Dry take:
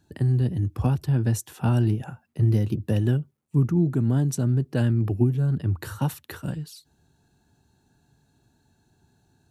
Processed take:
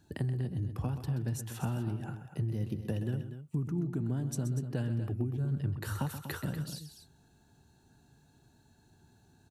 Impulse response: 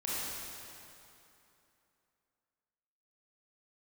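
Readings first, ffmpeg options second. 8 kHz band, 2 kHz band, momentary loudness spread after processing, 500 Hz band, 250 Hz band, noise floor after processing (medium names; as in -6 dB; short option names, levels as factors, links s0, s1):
-7.0 dB, -6.0 dB, 5 LU, -10.5 dB, -10.5 dB, -66 dBFS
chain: -filter_complex "[0:a]acompressor=threshold=0.0251:ratio=5,asplit=2[s0][s1];[s1]aecho=0:1:128.3|242:0.282|0.282[s2];[s0][s2]amix=inputs=2:normalize=0"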